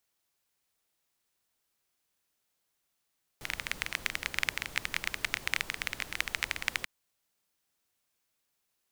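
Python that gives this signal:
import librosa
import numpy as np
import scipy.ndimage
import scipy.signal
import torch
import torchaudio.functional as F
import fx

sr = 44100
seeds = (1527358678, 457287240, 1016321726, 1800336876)

y = fx.rain(sr, seeds[0], length_s=3.44, drops_per_s=17.0, hz=2100.0, bed_db=-11.0)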